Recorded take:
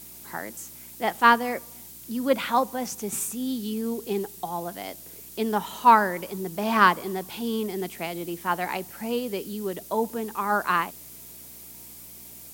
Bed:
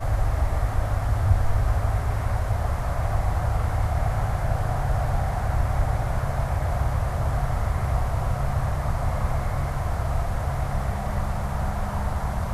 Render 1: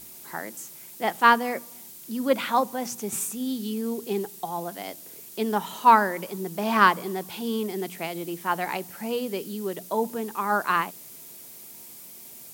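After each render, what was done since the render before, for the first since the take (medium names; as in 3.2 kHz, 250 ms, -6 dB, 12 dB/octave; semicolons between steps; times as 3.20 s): de-hum 60 Hz, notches 5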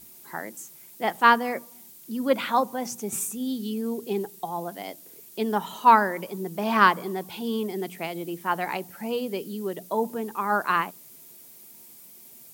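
noise reduction 6 dB, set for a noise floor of -45 dBFS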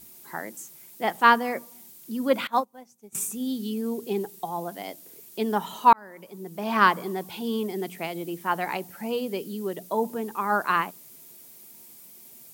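2.47–3.15 s: upward expansion 2.5:1, over -36 dBFS; 5.93–6.96 s: fade in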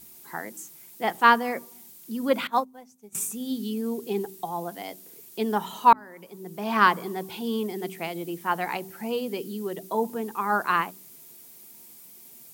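band-stop 590 Hz, Q 12; de-hum 63.84 Hz, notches 6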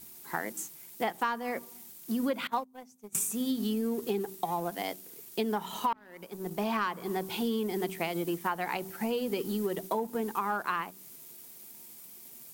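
waveshaping leveller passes 1; compression 16:1, threshold -27 dBFS, peak gain reduction 18.5 dB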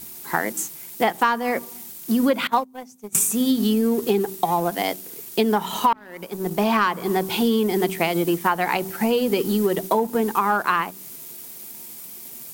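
trim +11 dB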